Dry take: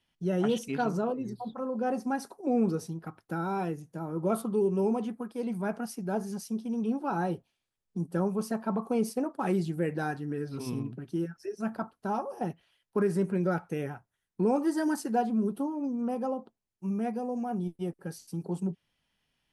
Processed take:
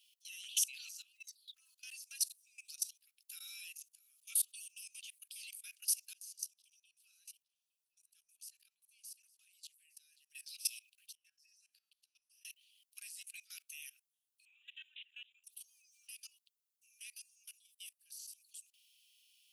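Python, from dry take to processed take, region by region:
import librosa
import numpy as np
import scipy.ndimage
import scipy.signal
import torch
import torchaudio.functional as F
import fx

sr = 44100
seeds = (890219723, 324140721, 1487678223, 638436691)

y = fx.chain(x, sr, fx.level_steps(step_db=23),
    fx.echo_single(ms=860, db=-19.5), at=(6.13, 10.31))
y = fx.chain(y, sr, fx.over_compress(threshold_db=-39.0, ratio=-1.0),
    fx.lowpass(hz=3700.0, slope=6),
    fx.comb_fb(f0_hz=110.0, decay_s=0.64, harmonics='odd', damping=0.0, mix_pct=70), at=(11.15, 12.45))
y = fx.chain(y, sr, fx.bass_treble(bass_db=-3, treble_db=-11),
    fx.resample_bad(factor=6, down='none', up='filtered'), at=(14.45, 15.44))
y = scipy.signal.sosfilt(scipy.signal.cheby1(5, 1.0, 2600.0, 'highpass', fs=sr, output='sos'), y)
y = fx.high_shelf(y, sr, hz=7200.0, db=11.5)
y = fx.level_steps(y, sr, step_db=20)
y = y * librosa.db_to_amplitude(10.0)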